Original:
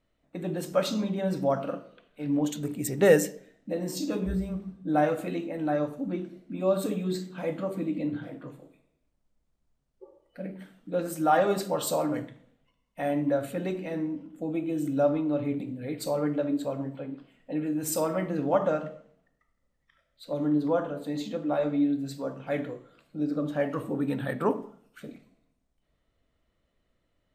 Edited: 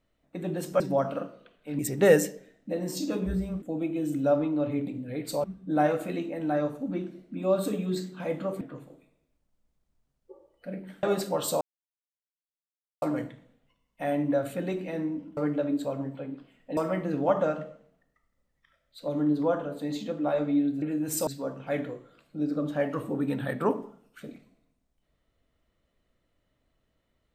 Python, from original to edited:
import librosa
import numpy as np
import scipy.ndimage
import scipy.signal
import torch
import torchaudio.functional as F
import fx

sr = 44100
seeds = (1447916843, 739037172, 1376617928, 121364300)

y = fx.edit(x, sr, fx.cut(start_s=0.8, length_s=0.52),
    fx.cut(start_s=2.31, length_s=0.48),
    fx.cut(start_s=7.79, length_s=0.54),
    fx.cut(start_s=10.75, length_s=0.67),
    fx.insert_silence(at_s=12.0, length_s=1.41),
    fx.move(start_s=14.35, length_s=1.82, to_s=4.62),
    fx.move(start_s=17.57, length_s=0.45, to_s=22.07), tone=tone)